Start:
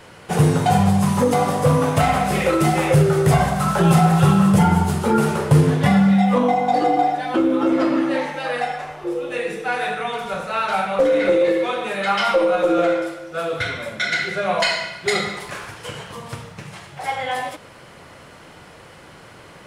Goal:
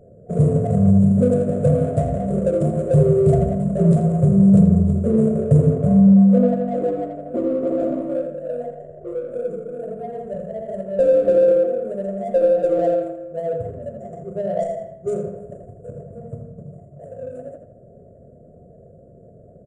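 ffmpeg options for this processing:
ffmpeg -i in.wav -filter_complex "[0:a]afftfilt=real='re*(1-between(b*sr/4096,720,6900))':imag='im*(1-between(b*sr/4096,720,6900))':win_size=4096:overlap=0.75,adynamicsmooth=sensitivity=3.5:basefreq=1700,aresample=22050,aresample=44100,superequalizer=6b=0.398:10b=1.41,asplit=2[link_01][link_02];[link_02]adelay=82,lowpass=frequency=4700:poles=1,volume=-7dB,asplit=2[link_03][link_04];[link_04]adelay=82,lowpass=frequency=4700:poles=1,volume=0.4,asplit=2[link_05][link_06];[link_06]adelay=82,lowpass=frequency=4700:poles=1,volume=0.4,asplit=2[link_07][link_08];[link_08]adelay=82,lowpass=frequency=4700:poles=1,volume=0.4,asplit=2[link_09][link_10];[link_10]adelay=82,lowpass=frequency=4700:poles=1,volume=0.4[link_11];[link_03][link_05][link_07][link_09][link_11]amix=inputs=5:normalize=0[link_12];[link_01][link_12]amix=inputs=2:normalize=0" out.wav

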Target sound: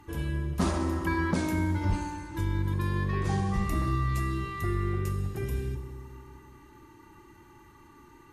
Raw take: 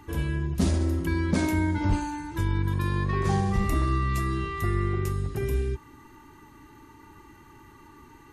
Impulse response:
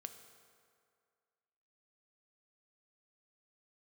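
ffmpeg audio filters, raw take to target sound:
-filter_complex "[0:a]asettb=1/sr,asplit=3[link_01][link_02][link_03];[link_01]atrim=end=0.584[link_04];[link_02]atrim=start=0.58:end=1.34,asetpts=PTS-STARTPTS,afade=type=in:duration=0.004:curve=qsin,afade=type=out:start_time=0.756:duration=0.004:curve=qsin,equalizer=frequency=1100:width=1:gain=13.5[link_05];[link_03]atrim=start=1.336[link_06];[link_04][link_05]acrossfade=duration=0.004:curve1=hsin:curve2=qsin[link_07];[link_07][link_06]acrossfade=duration=0.004:curve1=qsin:curve2=hsin[link_08];[1:a]atrim=start_sample=2205,asetrate=33516,aresample=44100[link_09];[link_08][link_09]afir=irnorm=-1:irlink=0"

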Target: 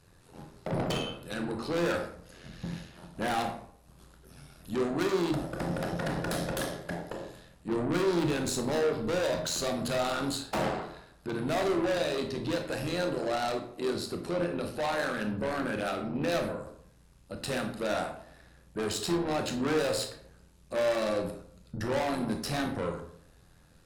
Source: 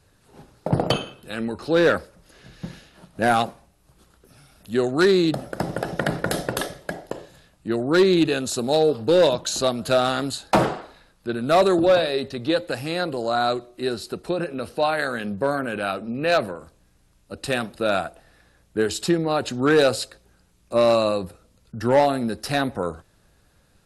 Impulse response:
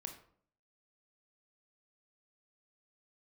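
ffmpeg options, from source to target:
-filter_complex "[0:a]asettb=1/sr,asplit=3[link_01][link_02][link_03];[link_01]atrim=end=7.724[link_04];[link_02]atrim=start=7.72:end=8.76,asetpts=PTS-STARTPTS,afade=type=in:duration=0.004:curve=qsin,afade=type=out:start_time=1.036:duration=0.004:curve=qsin,lowshelf=frequency=120:gain=10.5[link_05];[link_03]atrim=start=8.756[link_06];[link_04][link_05]acrossfade=duration=0.004:curve1=hsin:curve2=qsin[link_07];[link_07][link_06]acrossfade=duration=0.004:curve1=qsin:curve2=hsin,tremolo=f=86:d=0.788,asoftclip=type=tanh:threshold=-29dB[link_08];[1:a]atrim=start_sample=2205,asetrate=40572,aresample=44100[link_09];[link_08][link_09]afir=irnorm=-1:irlink=0,volume=5.5dB"

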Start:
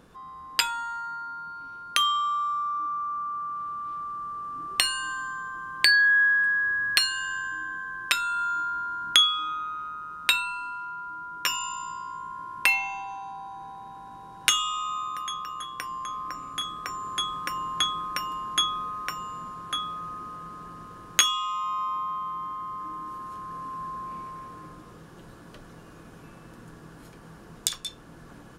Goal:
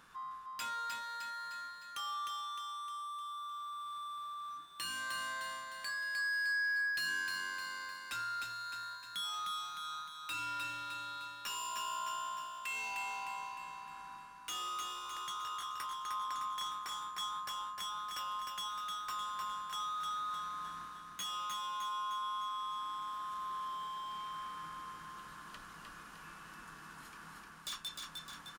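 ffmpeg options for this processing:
ffmpeg -i in.wav -af "lowshelf=frequency=790:width_type=q:width=1.5:gain=-12.5,bandreject=frequency=60:width_type=h:width=6,bandreject=frequency=120:width_type=h:width=6,areverse,acompressor=threshold=-33dB:ratio=12,areverse,asoftclip=type=hard:threshold=-36.5dB,aecho=1:1:306|612|918|1224|1530|1836|2142:0.631|0.334|0.177|0.0939|0.0498|0.0264|0.014,volume=-1.5dB" out.wav

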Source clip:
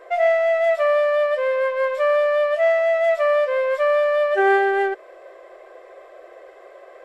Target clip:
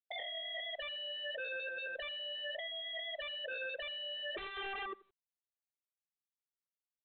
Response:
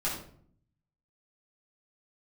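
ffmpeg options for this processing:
-filter_complex "[0:a]afftfilt=real='re*gte(hypot(re,im),0.631)':imag='im*gte(hypot(re,im),0.631)':win_size=1024:overlap=0.75,acompressor=threshold=-24dB:ratio=4,aeval=exprs='0.112*(cos(1*acos(clip(val(0)/0.112,-1,1)))-cos(1*PI/2))+0.00158*(cos(3*acos(clip(val(0)/0.112,-1,1)))-cos(3*PI/2))':channel_layout=same,crystalizer=i=7:c=0,aeval=exprs='0.0237*(abs(mod(val(0)/0.0237+3,4)-2)-1)':channel_layout=same,asplit=2[link_01][link_02];[link_02]adelay=84,lowpass=frequency=2600:poles=1,volume=-20.5dB,asplit=2[link_03][link_04];[link_04]adelay=84,lowpass=frequency=2600:poles=1,volume=0.15[link_05];[link_01][link_03][link_05]amix=inputs=3:normalize=0,volume=-3.5dB" -ar 8000 -c:a pcm_mulaw

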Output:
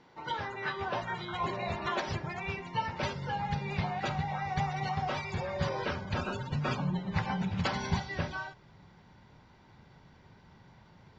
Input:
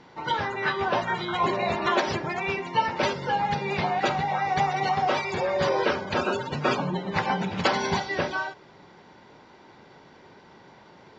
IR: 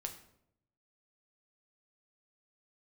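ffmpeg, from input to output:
-af "asubboost=boost=7.5:cutoff=130,volume=-8.5dB"

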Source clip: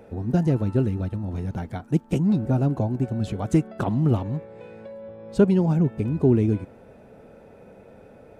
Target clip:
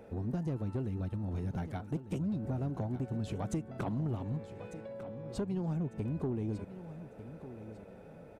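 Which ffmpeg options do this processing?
ffmpeg -i in.wav -filter_complex "[0:a]acompressor=threshold=-25dB:ratio=6,asoftclip=type=tanh:threshold=-22dB,asplit=2[link_01][link_02];[link_02]aecho=0:1:1199|2398|3597:0.224|0.0672|0.0201[link_03];[link_01][link_03]amix=inputs=2:normalize=0,volume=-5dB" out.wav

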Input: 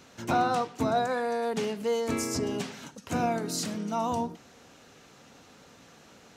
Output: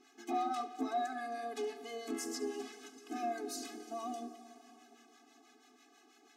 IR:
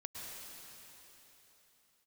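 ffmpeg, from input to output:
-filter_complex "[0:a]acrossover=split=910[link_01][link_02];[link_01]aeval=exprs='val(0)*(1-0.7/2+0.7/2*cos(2*PI*6.1*n/s))':channel_layout=same[link_03];[link_02]aeval=exprs='val(0)*(1-0.7/2-0.7/2*cos(2*PI*6.1*n/s))':channel_layout=same[link_04];[link_03][link_04]amix=inputs=2:normalize=0,asoftclip=type=tanh:threshold=-20.5dB,aeval=exprs='val(0)+0.000708*sin(2*PI*5300*n/s)':channel_layout=same,asplit=2[link_05][link_06];[1:a]atrim=start_sample=2205,adelay=71[link_07];[link_06][link_07]afir=irnorm=-1:irlink=0,volume=-10.5dB[link_08];[link_05][link_08]amix=inputs=2:normalize=0,afftfilt=real='re*eq(mod(floor(b*sr/1024/220),2),1)':imag='im*eq(mod(floor(b*sr/1024/220),2),1)':win_size=1024:overlap=0.75,volume=-3.5dB"

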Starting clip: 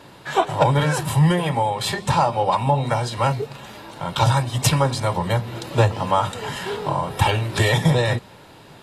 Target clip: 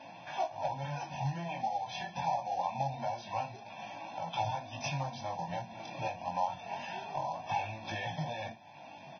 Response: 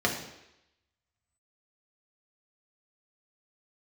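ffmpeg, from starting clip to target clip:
-af "dynaudnorm=framelen=450:gausssize=9:maxgain=13dB,asetrate=42336,aresample=44100,highpass=180,equalizer=frequency=450:width_type=q:width=4:gain=-3,equalizer=frequency=690:width_type=q:width=4:gain=10,equalizer=frequency=1600:width_type=q:width=4:gain=-10,equalizer=frequency=2300:width_type=q:width=4:gain=7,equalizer=frequency=4200:width_type=q:width=4:gain=-8,lowpass=frequency=6100:width=0.5412,lowpass=frequency=6100:width=1.3066,flanger=delay=3.5:depth=3.4:regen=-45:speed=1.9:shape=sinusoidal,acompressor=threshold=-47dB:ratio=2,flanger=delay=18:depth=5.6:speed=0.25,acrusher=bits=4:mode=log:mix=0:aa=0.000001,aecho=1:1:1.2:0.82,aecho=1:1:22|58:0.126|0.15" -ar 16000 -c:a libvorbis -b:a 16k

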